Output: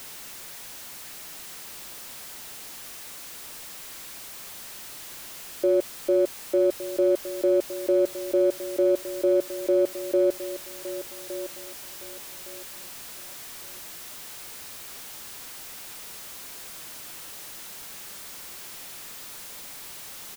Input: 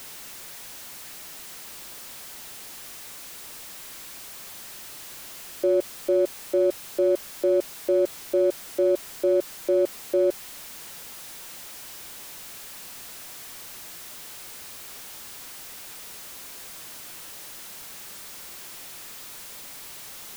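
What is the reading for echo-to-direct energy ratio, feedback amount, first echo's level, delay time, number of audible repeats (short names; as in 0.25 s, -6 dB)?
-12.5 dB, 25%, -13.0 dB, 1.163 s, 2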